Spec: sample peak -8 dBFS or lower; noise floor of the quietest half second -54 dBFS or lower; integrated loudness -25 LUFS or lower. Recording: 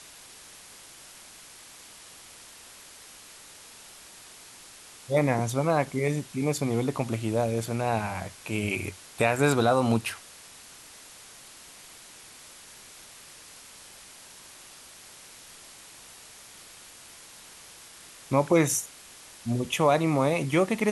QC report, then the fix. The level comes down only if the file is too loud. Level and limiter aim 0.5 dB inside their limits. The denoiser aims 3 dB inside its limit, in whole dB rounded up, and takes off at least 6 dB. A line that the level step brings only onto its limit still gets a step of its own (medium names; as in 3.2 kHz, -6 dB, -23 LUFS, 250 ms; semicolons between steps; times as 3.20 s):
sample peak -8.5 dBFS: pass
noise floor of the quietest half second -49 dBFS: fail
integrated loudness -26.5 LUFS: pass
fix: noise reduction 8 dB, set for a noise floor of -49 dBFS